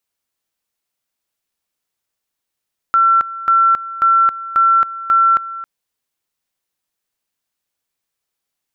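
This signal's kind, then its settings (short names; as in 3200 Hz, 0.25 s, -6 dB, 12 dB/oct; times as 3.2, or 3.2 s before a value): two-level tone 1350 Hz -8.5 dBFS, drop 16 dB, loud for 0.27 s, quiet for 0.27 s, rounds 5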